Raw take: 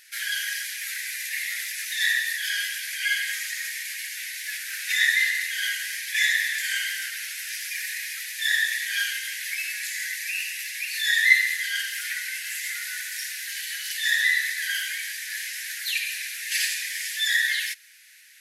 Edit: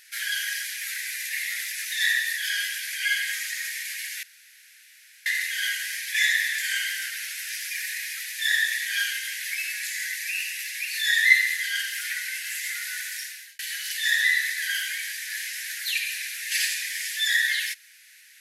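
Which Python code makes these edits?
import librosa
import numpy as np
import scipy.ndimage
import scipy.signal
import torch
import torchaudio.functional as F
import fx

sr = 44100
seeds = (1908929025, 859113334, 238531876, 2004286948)

y = fx.edit(x, sr, fx.room_tone_fill(start_s=4.23, length_s=1.03),
    fx.fade_out_span(start_s=13.1, length_s=0.49), tone=tone)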